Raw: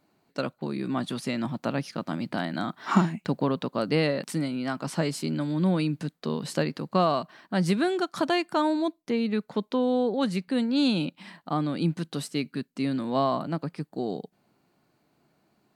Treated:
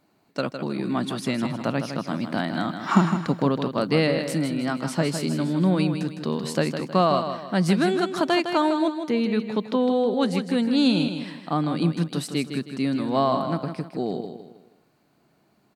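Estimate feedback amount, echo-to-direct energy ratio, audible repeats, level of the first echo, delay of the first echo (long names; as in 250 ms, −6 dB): 38%, −7.5 dB, 4, −8.0 dB, 158 ms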